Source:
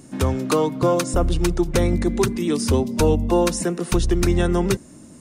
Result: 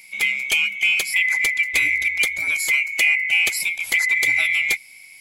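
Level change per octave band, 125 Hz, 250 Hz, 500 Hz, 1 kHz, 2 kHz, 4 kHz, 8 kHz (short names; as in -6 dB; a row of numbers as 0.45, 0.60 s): under -25 dB, under -25 dB, -23.5 dB, -15.5 dB, +19.0 dB, +7.5 dB, +2.0 dB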